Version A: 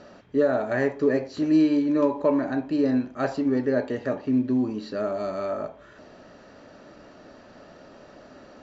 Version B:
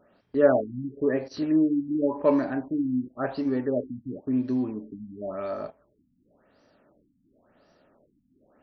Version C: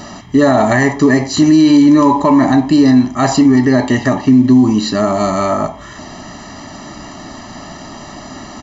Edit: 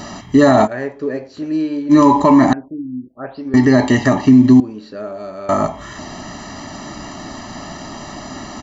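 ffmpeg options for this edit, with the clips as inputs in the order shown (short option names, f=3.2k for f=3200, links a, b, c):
-filter_complex "[0:a]asplit=2[a][b];[2:a]asplit=4[c][d][e][f];[c]atrim=end=0.68[g];[a]atrim=start=0.64:end=1.93[h];[d]atrim=start=1.89:end=2.532[i];[1:a]atrim=start=2.528:end=3.542[j];[e]atrim=start=3.538:end=4.602[k];[b]atrim=start=4.598:end=5.492[l];[f]atrim=start=5.488[m];[g][h]acrossfade=d=0.04:c1=tri:c2=tri[n];[n][i]acrossfade=d=0.04:c1=tri:c2=tri[o];[o][j]acrossfade=d=0.004:c1=hsin:c2=hsin[p];[p][k]acrossfade=d=0.004:c1=hsin:c2=hsin[q];[q][l]acrossfade=d=0.004:c1=hsin:c2=hsin[r];[r][m]acrossfade=d=0.004:c1=hsin:c2=hsin"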